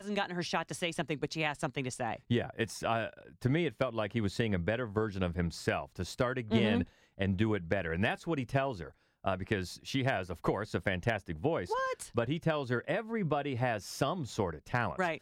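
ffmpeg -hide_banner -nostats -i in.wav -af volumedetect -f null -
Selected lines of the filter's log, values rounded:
mean_volume: -33.5 dB
max_volume: -16.0 dB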